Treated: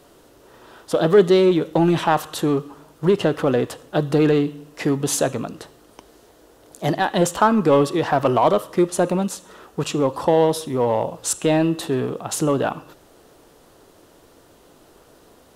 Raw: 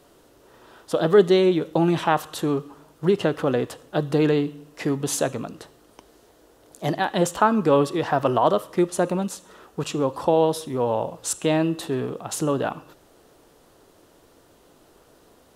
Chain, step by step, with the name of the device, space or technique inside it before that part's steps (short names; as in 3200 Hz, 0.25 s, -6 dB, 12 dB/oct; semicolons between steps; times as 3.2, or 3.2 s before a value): parallel distortion (in parallel at -5 dB: hard clip -18 dBFS, distortion -9 dB)